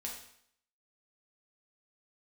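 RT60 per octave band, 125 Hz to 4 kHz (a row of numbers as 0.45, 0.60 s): 0.60, 0.65, 0.65, 0.65, 0.65, 0.65 s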